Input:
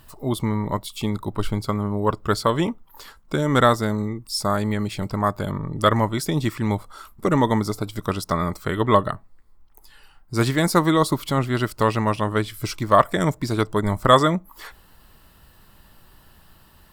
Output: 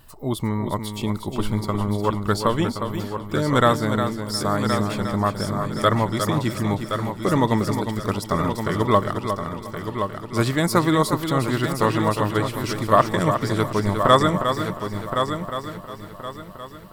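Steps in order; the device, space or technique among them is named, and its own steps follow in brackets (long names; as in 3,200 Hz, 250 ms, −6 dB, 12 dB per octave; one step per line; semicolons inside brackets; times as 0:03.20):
multi-head tape echo (echo machine with several playback heads 357 ms, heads first and third, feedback 47%, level −8 dB; tape wow and flutter 15 cents)
level −1 dB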